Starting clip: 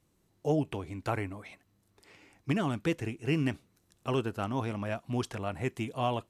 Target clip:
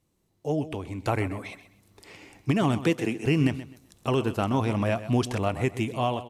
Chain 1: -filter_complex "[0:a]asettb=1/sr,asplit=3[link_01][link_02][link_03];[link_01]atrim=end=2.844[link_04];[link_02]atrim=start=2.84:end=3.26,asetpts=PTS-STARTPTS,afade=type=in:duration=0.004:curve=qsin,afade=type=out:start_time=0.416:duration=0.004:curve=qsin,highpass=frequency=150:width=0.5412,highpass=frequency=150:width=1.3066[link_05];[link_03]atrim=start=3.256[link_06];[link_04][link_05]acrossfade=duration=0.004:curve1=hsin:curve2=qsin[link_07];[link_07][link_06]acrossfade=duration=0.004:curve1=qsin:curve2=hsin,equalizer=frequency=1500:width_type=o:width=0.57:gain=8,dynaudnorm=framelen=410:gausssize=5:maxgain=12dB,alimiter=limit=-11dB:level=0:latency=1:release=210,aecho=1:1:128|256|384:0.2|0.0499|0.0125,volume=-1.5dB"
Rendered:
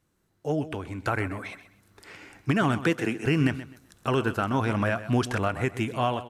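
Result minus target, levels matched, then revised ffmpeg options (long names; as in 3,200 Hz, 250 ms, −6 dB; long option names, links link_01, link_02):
2,000 Hz band +4.5 dB
-filter_complex "[0:a]asettb=1/sr,asplit=3[link_01][link_02][link_03];[link_01]atrim=end=2.844[link_04];[link_02]atrim=start=2.84:end=3.26,asetpts=PTS-STARTPTS,afade=type=in:duration=0.004:curve=qsin,afade=type=out:start_time=0.416:duration=0.004:curve=qsin,highpass=frequency=150:width=0.5412,highpass=frequency=150:width=1.3066[link_05];[link_03]atrim=start=3.256[link_06];[link_04][link_05]acrossfade=duration=0.004:curve1=hsin:curve2=qsin[link_07];[link_07][link_06]acrossfade=duration=0.004:curve1=qsin:curve2=hsin,equalizer=frequency=1500:width_type=o:width=0.57:gain=-4,dynaudnorm=framelen=410:gausssize=5:maxgain=12dB,alimiter=limit=-11dB:level=0:latency=1:release=210,aecho=1:1:128|256|384:0.2|0.0499|0.0125,volume=-1.5dB"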